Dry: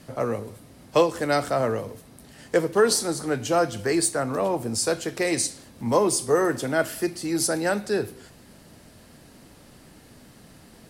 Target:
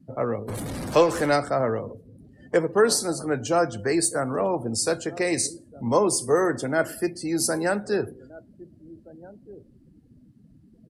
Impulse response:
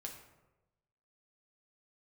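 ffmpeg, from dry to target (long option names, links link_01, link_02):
-filter_complex "[0:a]asettb=1/sr,asplit=3[link_01][link_02][link_03];[link_01]atrim=end=0.484[link_04];[link_02]atrim=start=0.48:end=1.36,asetpts=PTS-STARTPTS,afade=type=in:duration=0.004:curve=qsin,afade=type=out:start_time=0.876:duration=0.004:curve=qsin,aeval=exprs='val(0)+0.5*0.0501*sgn(val(0))':channel_layout=same[link_05];[link_03]atrim=start=1.356[link_06];[link_04][link_05]acrossfade=duration=0.004:curve1=hsin:curve2=qsin[link_07];[link_07][link_06]acrossfade=duration=0.004:curve1=qsin:curve2=hsin,asplit=2[link_08][link_09];[link_09]adelay=1574,volume=-19dB,highshelf=frequency=4000:gain=-35.4[link_10];[link_08][link_10]amix=inputs=2:normalize=0,afftdn=noise_reduction=28:noise_floor=-41,aresample=32000,aresample=44100,adynamicequalizer=threshold=0.00251:dfrequency=3300:dqfactor=3.1:tfrequency=3300:tqfactor=3.1:attack=5:release=100:ratio=0.375:range=3.5:mode=cutabove:tftype=bell"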